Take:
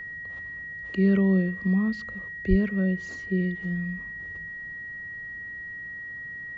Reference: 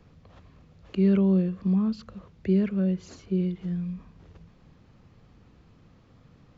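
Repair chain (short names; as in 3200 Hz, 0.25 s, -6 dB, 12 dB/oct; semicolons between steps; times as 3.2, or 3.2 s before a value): notch 1900 Hz, Q 30; 2.49–2.61 HPF 140 Hz 24 dB/oct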